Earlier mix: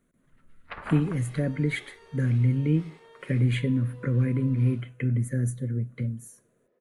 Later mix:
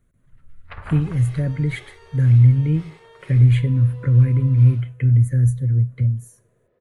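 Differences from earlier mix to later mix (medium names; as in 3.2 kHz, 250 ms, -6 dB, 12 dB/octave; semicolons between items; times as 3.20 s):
second sound +5.5 dB; master: add resonant low shelf 150 Hz +12 dB, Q 1.5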